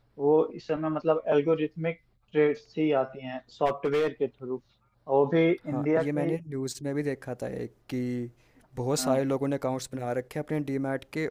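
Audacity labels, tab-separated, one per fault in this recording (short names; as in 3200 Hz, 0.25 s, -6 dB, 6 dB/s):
3.650000	4.070000	clipped -21.5 dBFS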